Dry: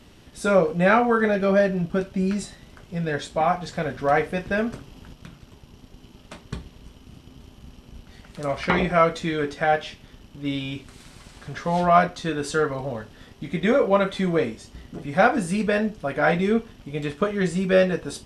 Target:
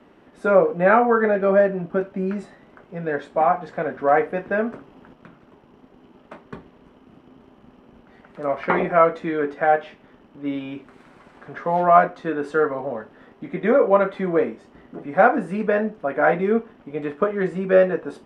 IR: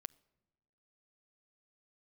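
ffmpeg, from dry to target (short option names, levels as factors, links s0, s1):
-filter_complex "[0:a]acrossover=split=210 2000:gain=0.1 1 0.0708[s0][s1][s2];[s0][s1][s2]amix=inputs=3:normalize=0,volume=1.5"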